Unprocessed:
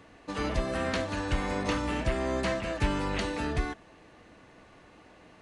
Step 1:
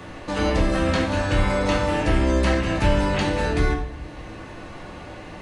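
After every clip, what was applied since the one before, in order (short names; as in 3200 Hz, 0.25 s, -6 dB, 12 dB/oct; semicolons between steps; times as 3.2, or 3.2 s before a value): shoebox room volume 110 m³, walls mixed, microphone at 1 m; three-band squash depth 40%; gain +4 dB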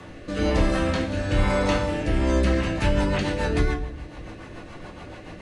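rotary speaker horn 1.1 Hz, later 7 Hz, at 2.1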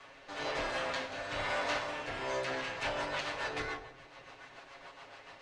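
minimum comb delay 7.3 ms; three-band isolator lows -18 dB, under 550 Hz, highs -21 dB, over 7700 Hz; gain -5.5 dB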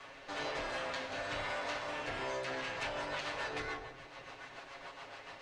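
compressor, threshold -38 dBFS, peak gain reduction 8.5 dB; gain +2.5 dB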